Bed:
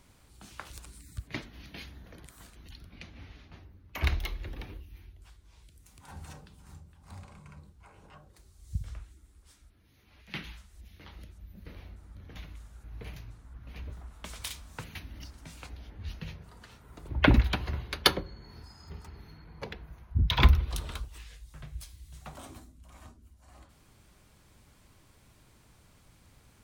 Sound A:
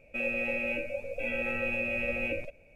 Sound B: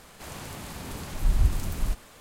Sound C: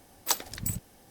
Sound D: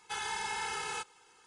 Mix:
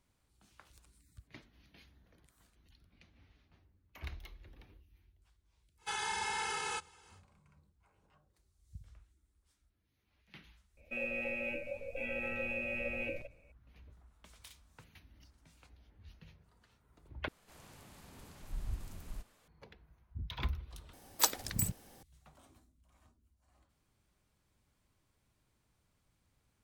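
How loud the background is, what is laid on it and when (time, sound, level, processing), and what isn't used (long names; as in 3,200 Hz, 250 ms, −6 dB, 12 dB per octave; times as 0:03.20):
bed −16.5 dB
0:05.77: mix in D −0.5 dB, fades 0.10 s
0:10.77: mix in A −6.5 dB
0:17.28: overwrite with B −17.5 dB
0:20.93: overwrite with C −1.5 dB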